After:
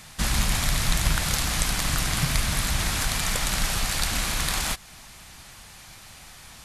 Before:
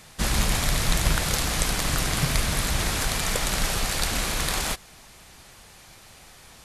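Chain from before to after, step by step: peaking EQ 440 Hz -7.5 dB 1.1 oct; in parallel at -2 dB: compression, threshold -33 dBFS, peak gain reduction 16 dB; on the sum: trim -1.5 dB

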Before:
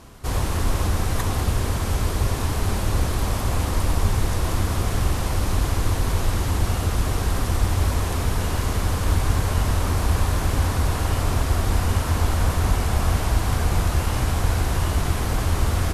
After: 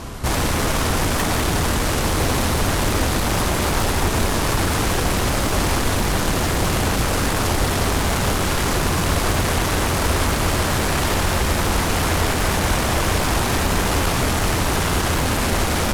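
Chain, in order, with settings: in parallel at -8 dB: sine folder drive 20 dB, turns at -6.5 dBFS; on the sum: loudspeaker Doppler distortion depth 0.13 ms; trim -3.5 dB

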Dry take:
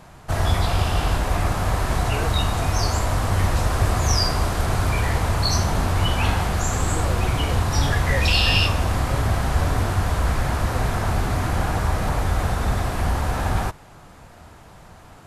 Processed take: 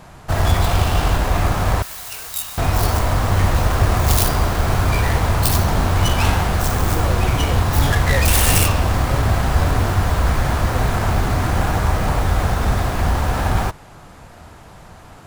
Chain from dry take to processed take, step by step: tracing distortion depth 0.46 ms; 1.82–2.58 s: pre-emphasis filter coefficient 0.97; trim +4 dB

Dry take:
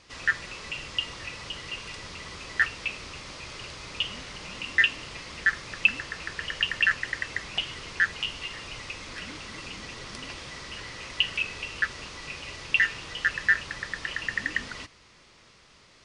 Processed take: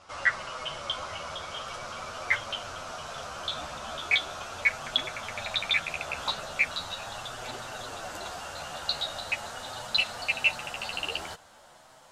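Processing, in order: gliding tape speed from 108% -> 157%; chorus voices 2, 0.4 Hz, delay 11 ms, depth 3.2 ms; high-order bell 880 Hz +12.5 dB

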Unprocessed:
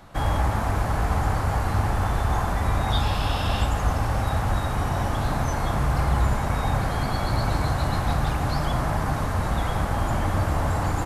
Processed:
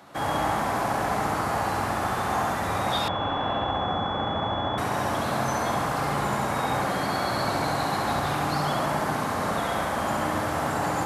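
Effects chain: high-pass 210 Hz 12 dB/octave; flutter echo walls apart 11.7 m, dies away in 1.1 s; 3.08–4.78 s: class-D stage that switches slowly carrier 3.4 kHz

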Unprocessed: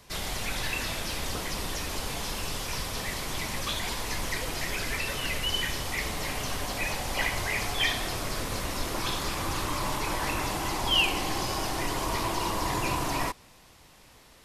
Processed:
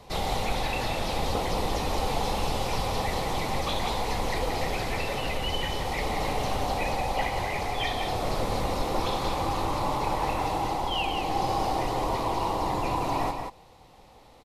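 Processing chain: treble shelf 2.9 kHz -11.5 dB; gain riding 0.5 s; graphic EQ with 31 bands 500 Hz +6 dB, 800 Hz +10 dB, 1.6 kHz -8 dB, 4 kHz +5 dB; delay 179 ms -6 dB; trim +1.5 dB

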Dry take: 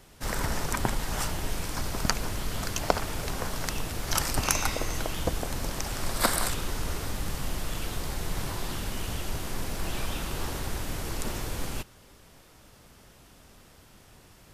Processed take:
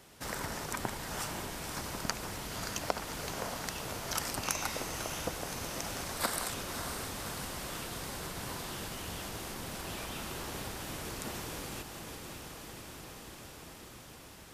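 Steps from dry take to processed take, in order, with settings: echo that smears into a reverb 588 ms, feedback 72%, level -8.5 dB; compression 1.5:1, threshold -38 dBFS, peak gain reduction 8 dB; high-pass 150 Hz 6 dB/octave; trim -1 dB

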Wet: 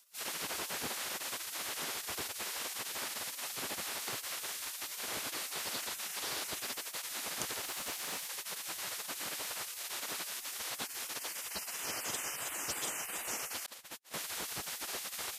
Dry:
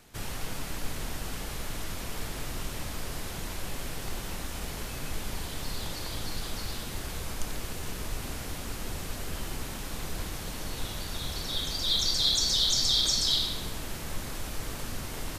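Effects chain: spectral gate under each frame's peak -25 dB weak; 7.64–8.28 s: short-mantissa float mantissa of 2-bit; 13.66–14.14 s: gate -41 dBFS, range -40 dB; trim +3 dB

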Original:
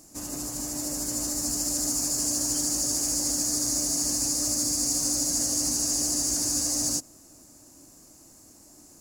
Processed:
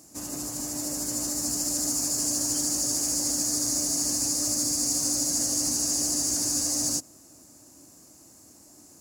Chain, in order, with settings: high-pass 66 Hz

